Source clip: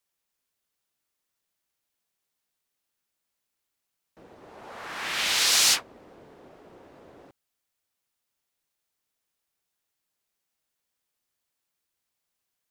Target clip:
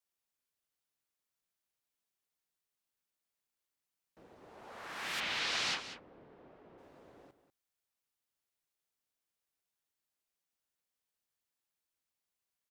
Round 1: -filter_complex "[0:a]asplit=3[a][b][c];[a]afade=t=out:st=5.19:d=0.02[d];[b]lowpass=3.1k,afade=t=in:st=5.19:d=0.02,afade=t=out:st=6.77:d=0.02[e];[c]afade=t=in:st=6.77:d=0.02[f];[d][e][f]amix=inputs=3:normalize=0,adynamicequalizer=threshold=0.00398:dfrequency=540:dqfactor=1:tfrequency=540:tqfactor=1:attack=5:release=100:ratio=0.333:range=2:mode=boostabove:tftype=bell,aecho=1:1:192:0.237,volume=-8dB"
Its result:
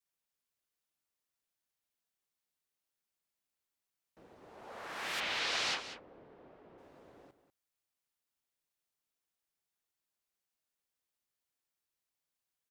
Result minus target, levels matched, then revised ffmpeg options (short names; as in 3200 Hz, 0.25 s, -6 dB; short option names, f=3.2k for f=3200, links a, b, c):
500 Hz band +2.5 dB
-filter_complex "[0:a]asplit=3[a][b][c];[a]afade=t=out:st=5.19:d=0.02[d];[b]lowpass=3.1k,afade=t=in:st=5.19:d=0.02,afade=t=out:st=6.77:d=0.02[e];[c]afade=t=in:st=6.77:d=0.02[f];[d][e][f]amix=inputs=3:normalize=0,adynamicequalizer=threshold=0.00398:dfrequency=170:dqfactor=1:tfrequency=170:tqfactor=1:attack=5:release=100:ratio=0.333:range=2:mode=boostabove:tftype=bell,aecho=1:1:192:0.237,volume=-8dB"